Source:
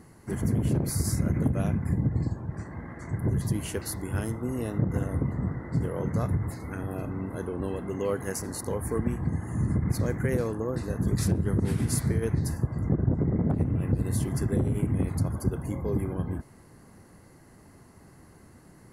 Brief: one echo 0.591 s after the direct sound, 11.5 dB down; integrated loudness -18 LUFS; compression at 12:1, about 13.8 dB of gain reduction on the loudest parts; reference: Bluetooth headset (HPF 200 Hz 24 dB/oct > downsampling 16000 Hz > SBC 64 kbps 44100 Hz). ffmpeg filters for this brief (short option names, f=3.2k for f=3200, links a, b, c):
-af "acompressor=threshold=-34dB:ratio=12,highpass=f=200:w=0.5412,highpass=f=200:w=1.3066,aecho=1:1:591:0.266,aresample=16000,aresample=44100,volume=25.5dB" -ar 44100 -c:a sbc -b:a 64k